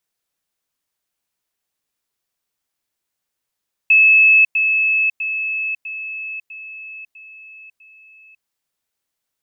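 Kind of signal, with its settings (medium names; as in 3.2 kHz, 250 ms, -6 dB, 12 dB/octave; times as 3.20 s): level ladder 2.6 kHz -7.5 dBFS, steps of -6 dB, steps 7, 0.55 s 0.10 s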